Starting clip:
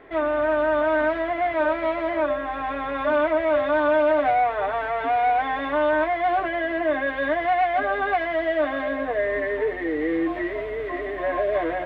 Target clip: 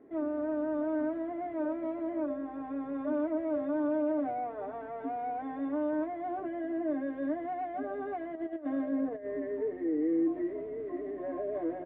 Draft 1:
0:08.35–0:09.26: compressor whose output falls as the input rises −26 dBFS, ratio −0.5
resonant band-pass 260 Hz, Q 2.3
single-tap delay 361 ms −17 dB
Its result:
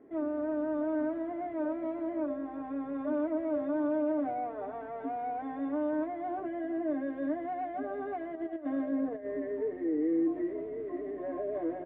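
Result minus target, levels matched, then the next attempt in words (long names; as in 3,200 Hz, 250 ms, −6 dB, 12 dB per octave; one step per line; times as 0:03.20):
echo-to-direct +6.5 dB
0:08.35–0:09.26: compressor whose output falls as the input rises −26 dBFS, ratio −0.5
resonant band-pass 260 Hz, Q 2.3
single-tap delay 361 ms −23.5 dB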